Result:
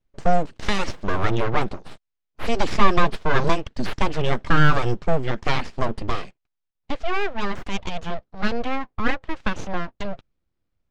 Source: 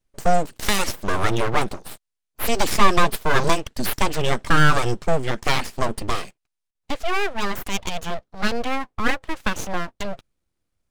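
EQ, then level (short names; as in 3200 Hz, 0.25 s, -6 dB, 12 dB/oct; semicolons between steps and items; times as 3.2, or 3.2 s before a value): air absorption 130 m; low shelf 320 Hz +3 dB; -1.5 dB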